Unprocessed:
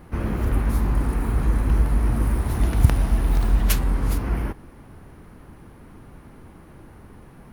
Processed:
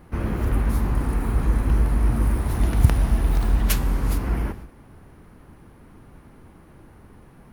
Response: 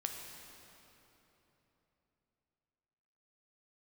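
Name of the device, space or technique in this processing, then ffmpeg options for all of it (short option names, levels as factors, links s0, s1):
keyed gated reverb: -filter_complex "[0:a]asplit=3[s0][s1][s2];[1:a]atrim=start_sample=2205[s3];[s1][s3]afir=irnorm=-1:irlink=0[s4];[s2]apad=whole_len=332047[s5];[s4][s5]sidechaingate=range=0.0224:threshold=0.0112:ratio=16:detection=peak,volume=0.447[s6];[s0][s6]amix=inputs=2:normalize=0,volume=0.708"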